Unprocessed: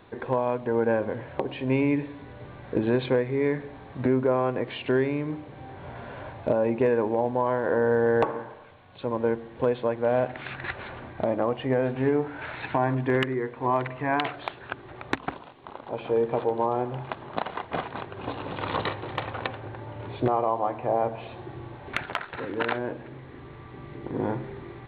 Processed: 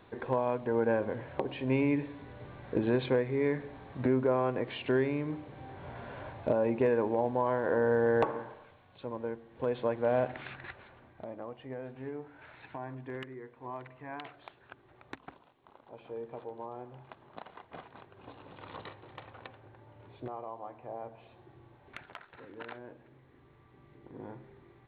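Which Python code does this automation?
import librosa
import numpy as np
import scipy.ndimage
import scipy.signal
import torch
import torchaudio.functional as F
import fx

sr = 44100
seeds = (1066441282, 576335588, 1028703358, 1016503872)

y = fx.gain(x, sr, db=fx.line((8.49, -4.5), (9.46, -13.5), (9.79, -4.5), (10.35, -4.5), (10.89, -17.0)))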